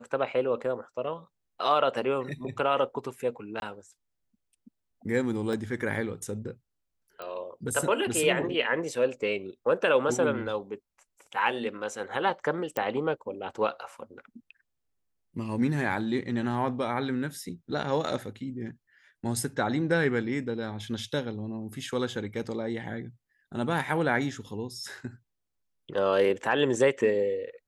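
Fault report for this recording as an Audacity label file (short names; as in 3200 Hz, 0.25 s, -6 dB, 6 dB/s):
3.600000	3.620000	gap 21 ms
5.530000	5.530000	gap 2.2 ms
7.220000	7.220000	pop -25 dBFS
12.770000	12.770000	pop -16 dBFS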